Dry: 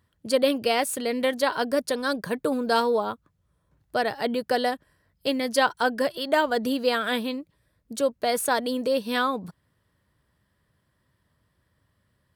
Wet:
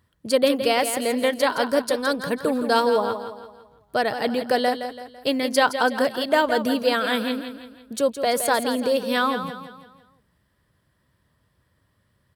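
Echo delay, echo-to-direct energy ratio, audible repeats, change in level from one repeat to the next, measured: 167 ms, -8.5 dB, 4, -7.5 dB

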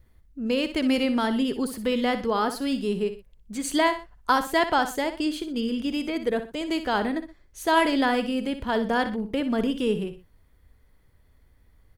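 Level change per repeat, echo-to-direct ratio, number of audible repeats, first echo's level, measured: -9.0 dB, -10.5 dB, 2, -11.0 dB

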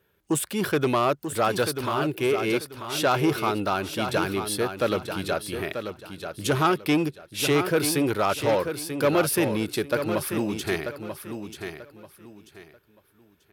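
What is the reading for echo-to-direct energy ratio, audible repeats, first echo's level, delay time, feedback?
-7.5 dB, 3, -8.0 dB, 938 ms, 26%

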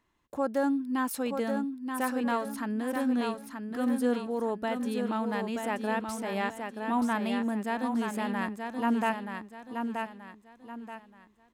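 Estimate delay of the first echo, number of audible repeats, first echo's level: 929 ms, 4, -5.5 dB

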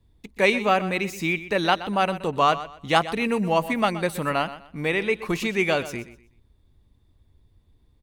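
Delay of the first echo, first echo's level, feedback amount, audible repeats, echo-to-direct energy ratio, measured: 124 ms, -14.5 dB, 27%, 2, -14.0 dB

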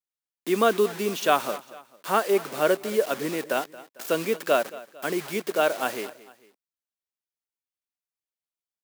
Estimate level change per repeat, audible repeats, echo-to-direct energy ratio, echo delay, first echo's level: -6.5 dB, 2, -17.5 dB, 225 ms, -18.5 dB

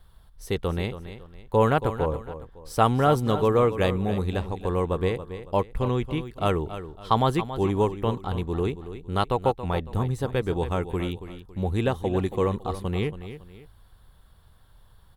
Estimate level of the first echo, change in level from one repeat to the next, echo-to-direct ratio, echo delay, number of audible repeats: -12.0 dB, -9.0 dB, -11.5 dB, 278 ms, 2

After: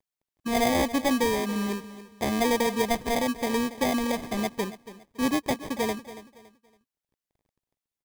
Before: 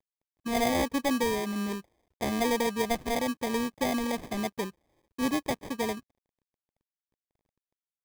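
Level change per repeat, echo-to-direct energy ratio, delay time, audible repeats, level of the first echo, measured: -10.0 dB, -14.5 dB, 281 ms, 2, -15.0 dB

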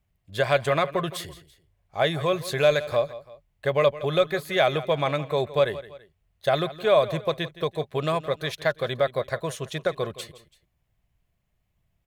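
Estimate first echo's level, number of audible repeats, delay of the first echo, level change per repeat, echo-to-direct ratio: -16.0 dB, 2, 167 ms, -7.5 dB, -15.5 dB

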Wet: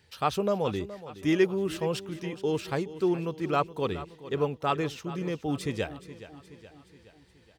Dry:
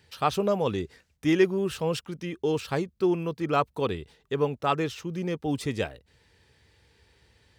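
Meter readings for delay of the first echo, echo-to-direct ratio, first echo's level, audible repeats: 421 ms, -13.5 dB, -15.0 dB, 4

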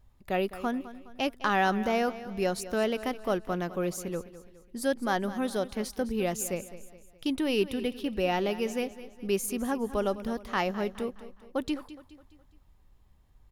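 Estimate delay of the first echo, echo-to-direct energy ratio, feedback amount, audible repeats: 208 ms, -14.0 dB, 44%, 3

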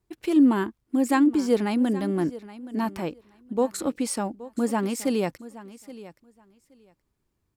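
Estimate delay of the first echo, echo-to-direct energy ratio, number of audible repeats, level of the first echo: 823 ms, -17.0 dB, 2, -17.0 dB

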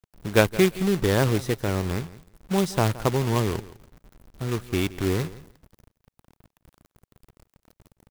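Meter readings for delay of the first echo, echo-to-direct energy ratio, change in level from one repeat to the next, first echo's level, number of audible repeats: 169 ms, -18.0 dB, -16.0 dB, -18.0 dB, 2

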